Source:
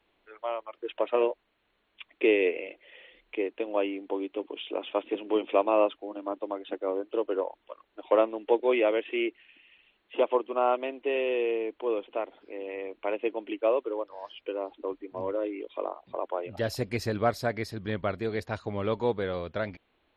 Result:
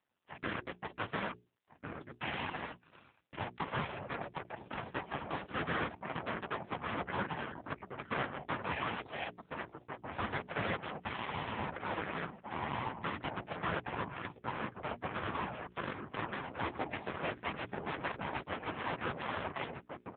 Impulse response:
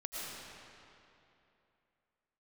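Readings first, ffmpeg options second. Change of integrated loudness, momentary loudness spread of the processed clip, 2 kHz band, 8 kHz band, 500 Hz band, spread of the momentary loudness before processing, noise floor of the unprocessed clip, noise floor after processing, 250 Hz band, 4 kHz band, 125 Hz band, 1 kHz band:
−9.5 dB, 7 LU, −1.0 dB, can't be measured, −16.0 dB, 12 LU, −73 dBFS, −68 dBFS, −9.5 dB, −3.5 dB, −3.0 dB, −4.0 dB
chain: -filter_complex "[0:a]acrossover=split=130|900|1700[link_01][link_02][link_03][link_04];[link_02]acompressor=threshold=-37dB:ratio=12[link_05];[link_01][link_05][link_03][link_04]amix=inputs=4:normalize=0,afftfilt=real='hypot(re,im)*cos(2*PI*random(0))':imag='hypot(re,im)*sin(2*PI*random(1))':win_size=512:overlap=0.75,acrossover=split=180 2300:gain=0.141 1 0.0631[link_06][link_07][link_08];[link_06][link_07][link_08]amix=inputs=3:normalize=0,aeval=exprs='abs(val(0))':channel_layout=same,asplit=2[link_09][link_10];[link_10]adelay=1399,volume=-8dB,highshelf=frequency=4000:gain=-31.5[link_11];[link_09][link_11]amix=inputs=2:normalize=0,asoftclip=type=hard:threshold=-34.5dB,aeval=exprs='0.0188*(cos(1*acos(clip(val(0)/0.0188,-1,1)))-cos(1*PI/2))+0.0015*(cos(2*acos(clip(val(0)/0.0188,-1,1)))-cos(2*PI/2))+0.000473*(cos(4*acos(clip(val(0)/0.0188,-1,1)))-cos(4*PI/2))+0.00335*(cos(7*acos(clip(val(0)/0.0188,-1,1)))-cos(7*PI/2))+0.00841*(cos(8*acos(clip(val(0)/0.0188,-1,1)))-cos(8*PI/2))':channel_layout=same,aemphasis=mode=reproduction:type=75fm,bandreject=frequency=60:width_type=h:width=6,bandreject=frequency=120:width_type=h:width=6,bandreject=frequency=180:width_type=h:width=6,bandreject=frequency=240:width_type=h:width=6,bandreject=frequency=300:width_type=h:width=6,bandreject=frequency=360:width_type=h:width=6,bandreject=frequency=420:width_type=h:width=6,volume=9dB" -ar 8000 -c:a libopencore_amrnb -b:a 5900

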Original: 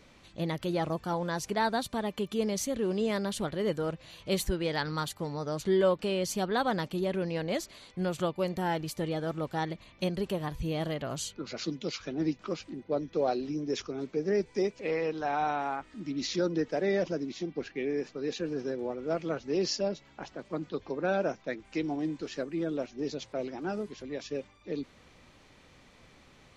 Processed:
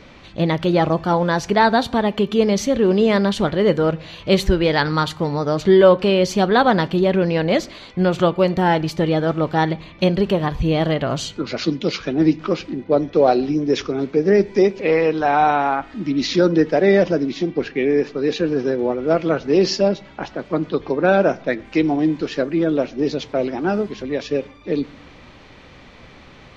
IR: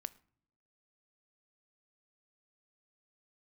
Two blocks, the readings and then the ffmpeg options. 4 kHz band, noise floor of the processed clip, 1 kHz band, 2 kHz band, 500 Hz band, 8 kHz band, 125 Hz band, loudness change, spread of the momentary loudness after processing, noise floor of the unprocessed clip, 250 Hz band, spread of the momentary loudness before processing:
+11.5 dB, −44 dBFS, +14.0 dB, +13.5 dB, +14.0 dB, +5.0 dB, +14.0 dB, +14.0 dB, 8 LU, −59 dBFS, +14.0 dB, 8 LU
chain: -filter_complex "[0:a]asplit=2[link_01][link_02];[1:a]atrim=start_sample=2205,lowpass=5000[link_03];[link_02][link_03]afir=irnorm=-1:irlink=0,volume=14dB[link_04];[link_01][link_04]amix=inputs=2:normalize=0,volume=1dB"

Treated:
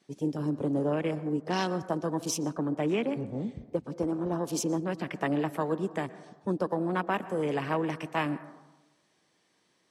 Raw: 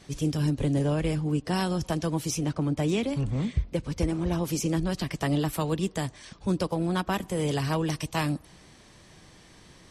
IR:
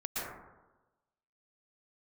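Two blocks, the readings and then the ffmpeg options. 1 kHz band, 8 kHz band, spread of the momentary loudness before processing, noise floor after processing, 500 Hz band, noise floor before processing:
+0.5 dB, −3.0 dB, 4 LU, −71 dBFS, +0.5 dB, −54 dBFS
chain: -filter_complex "[0:a]highpass=250,afwtdn=0.0112,asplit=2[link_01][link_02];[1:a]atrim=start_sample=2205,lowpass=8900[link_03];[link_02][link_03]afir=irnorm=-1:irlink=0,volume=-19dB[link_04];[link_01][link_04]amix=inputs=2:normalize=0"

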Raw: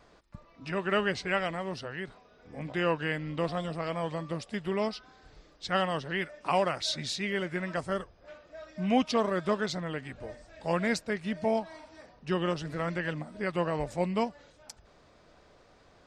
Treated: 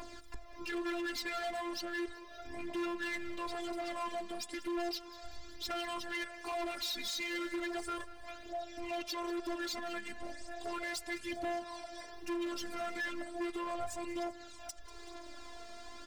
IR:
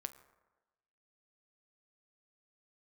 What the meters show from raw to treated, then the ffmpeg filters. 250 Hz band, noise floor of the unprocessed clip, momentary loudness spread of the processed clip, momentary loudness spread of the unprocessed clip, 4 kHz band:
−7.0 dB, −60 dBFS, 13 LU, 16 LU, −3.5 dB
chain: -filter_complex "[0:a]aemphasis=mode=production:type=cd,alimiter=level_in=0.5dB:limit=-24dB:level=0:latency=1:release=50,volume=-0.5dB,afftfilt=real='hypot(re,im)*cos(PI*b)':imag='0':win_size=512:overlap=0.75,aphaser=in_gain=1:out_gain=1:delay=4.6:decay=0.52:speed=0.35:type=triangular,acompressor=mode=upward:threshold=-40dB:ratio=2.5,asoftclip=type=hard:threshold=-37dB,asplit=2[link_01][link_02];[link_02]aecho=0:1:191|382|573|764|955:0.133|0.0747|0.0418|0.0234|0.0131[link_03];[link_01][link_03]amix=inputs=2:normalize=0,volume=3dB"

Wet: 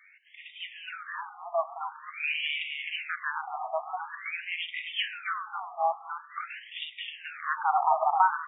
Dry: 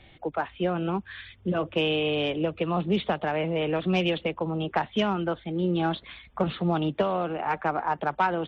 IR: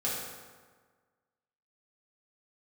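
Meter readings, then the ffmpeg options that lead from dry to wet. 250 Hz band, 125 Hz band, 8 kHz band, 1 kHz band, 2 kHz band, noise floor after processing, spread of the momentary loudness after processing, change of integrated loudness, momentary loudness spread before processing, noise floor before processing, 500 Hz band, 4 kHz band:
below −40 dB, below −40 dB, can't be measured, +1.0 dB, +1.0 dB, −52 dBFS, 14 LU, −4.0 dB, 6 LU, −54 dBFS, −10.5 dB, −2.0 dB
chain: -filter_complex "[0:a]asplit=8[link_01][link_02][link_03][link_04][link_05][link_06][link_07][link_08];[link_02]adelay=260,afreqshift=-130,volume=-4dB[link_09];[link_03]adelay=520,afreqshift=-260,volume=-9.2dB[link_10];[link_04]adelay=780,afreqshift=-390,volume=-14.4dB[link_11];[link_05]adelay=1040,afreqshift=-520,volume=-19.6dB[link_12];[link_06]adelay=1300,afreqshift=-650,volume=-24.8dB[link_13];[link_07]adelay=1560,afreqshift=-780,volume=-30dB[link_14];[link_08]adelay=1820,afreqshift=-910,volume=-35.2dB[link_15];[link_01][link_09][link_10][link_11][link_12][link_13][link_14][link_15]amix=inputs=8:normalize=0,asplit=2[link_16][link_17];[1:a]atrim=start_sample=2205[link_18];[link_17][link_18]afir=irnorm=-1:irlink=0,volume=-17.5dB[link_19];[link_16][link_19]amix=inputs=2:normalize=0,afftfilt=real='re*between(b*sr/1024,900*pow(2700/900,0.5+0.5*sin(2*PI*0.47*pts/sr))/1.41,900*pow(2700/900,0.5+0.5*sin(2*PI*0.47*pts/sr))*1.41)':imag='im*between(b*sr/1024,900*pow(2700/900,0.5+0.5*sin(2*PI*0.47*pts/sr))/1.41,900*pow(2700/900,0.5+0.5*sin(2*PI*0.47*pts/sr))*1.41)':win_size=1024:overlap=0.75,volume=2.5dB"

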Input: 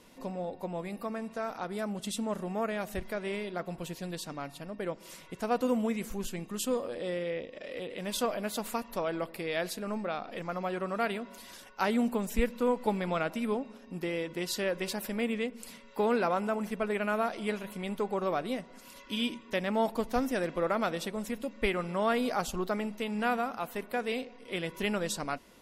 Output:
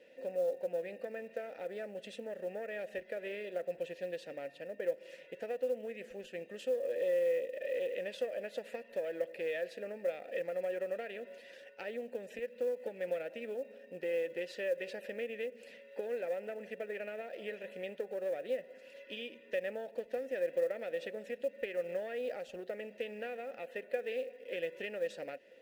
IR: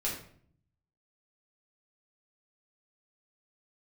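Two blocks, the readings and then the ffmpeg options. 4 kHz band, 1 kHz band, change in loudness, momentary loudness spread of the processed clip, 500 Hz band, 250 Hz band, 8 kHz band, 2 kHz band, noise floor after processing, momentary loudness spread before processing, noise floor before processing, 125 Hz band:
−12.0 dB, −17.0 dB, −6.0 dB, 9 LU, −2.5 dB, −17.0 dB, below −15 dB, −7.5 dB, −57 dBFS, 9 LU, −53 dBFS, below −15 dB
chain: -filter_complex "[0:a]acompressor=threshold=-33dB:ratio=16,aeval=exprs='0.0794*(cos(1*acos(clip(val(0)/0.0794,-1,1)))-cos(1*PI/2))+0.00631*(cos(2*acos(clip(val(0)/0.0794,-1,1)))-cos(2*PI/2))+0.0112*(cos(4*acos(clip(val(0)/0.0794,-1,1)))-cos(4*PI/2))+0.00178*(cos(5*acos(clip(val(0)/0.0794,-1,1)))-cos(5*PI/2))':channel_layout=same,asplit=3[link_01][link_02][link_03];[link_01]bandpass=frequency=530:width_type=q:width=8,volume=0dB[link_04];[link_02]bandpass=frequency=1840:width_type=q:width=8,volume=-6dB[link_05];[link_03]bandpass=frequency=2480:width_type=q:width=8,volume=-9dB[link_06];[link_04][link_05][link_06]amix=inputs=3:normalize=0,acrusher=bits=8:mode=log:mix=0:aa=0.000001,volume=8dB"

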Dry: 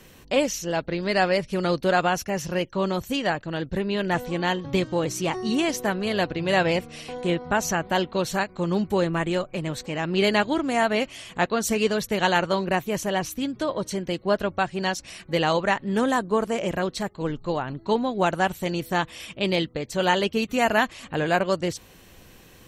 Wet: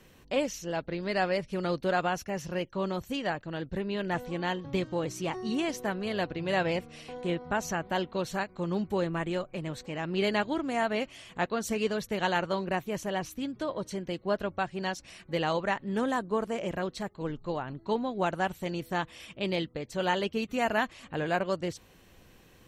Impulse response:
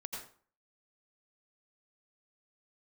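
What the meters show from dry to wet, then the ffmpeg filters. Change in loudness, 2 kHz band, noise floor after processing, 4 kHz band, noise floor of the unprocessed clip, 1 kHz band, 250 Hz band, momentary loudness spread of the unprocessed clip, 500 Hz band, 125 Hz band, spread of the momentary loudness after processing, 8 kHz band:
−7.0 dB, −7.0 dB, −58 dBFS, −8.5 dB, −51 dBFS, −6.5 dB, −6.5 dB, 7 LU, −6.5 dB, −6.5 dB, 7 LU, −10.0 dB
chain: -af "highshelf=frequency=4400:gain=-5,volume=-6.5dB"

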